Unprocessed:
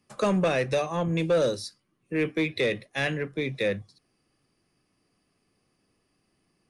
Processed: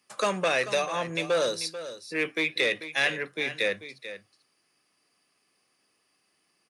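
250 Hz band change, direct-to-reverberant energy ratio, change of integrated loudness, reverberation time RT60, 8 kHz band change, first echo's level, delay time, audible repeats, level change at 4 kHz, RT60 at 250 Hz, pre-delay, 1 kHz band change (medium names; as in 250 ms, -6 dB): -8.0 dB, no reverb, -0.5 dB, no reverb, +5.5 dB, -12.5 dB, 440 ms, 1, +5.5 dB, no reverb, no reverb, +1.5 dB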